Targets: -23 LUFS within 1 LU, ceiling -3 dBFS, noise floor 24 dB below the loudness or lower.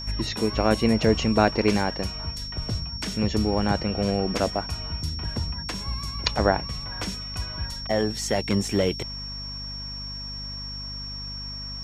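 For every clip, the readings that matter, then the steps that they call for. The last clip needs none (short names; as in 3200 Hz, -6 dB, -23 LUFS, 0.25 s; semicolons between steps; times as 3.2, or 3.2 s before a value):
hum 50 Hz; harmonics up to 250 Hz; hum level -36 dBFS; steady tone 5500 Hz; tone level -34 dBFS; loudness -26.5 LUFS; peak -3.5 dBFS; loudness target -23.0 LUFS
-> notches 50/100/150/200/250 Hz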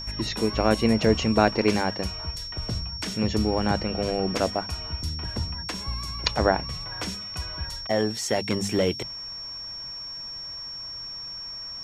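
hum none; steady tone 5500 Hz; tone level -34 dBFS
-> notch 5500 Hz, Q 30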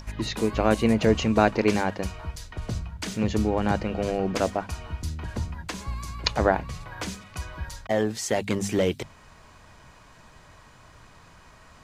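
steady tone none; loudness -26.5 LUFS; peak -3.5 dBFS; loudness target -23.0 LUFS
-> gain +3.5 dB; limiter -3 dBFS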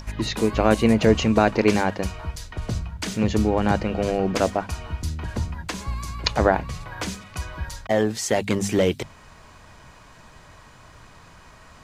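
loudness -23.5 LUFS; peak -3.0 dBFS; noise floor -49 dBFS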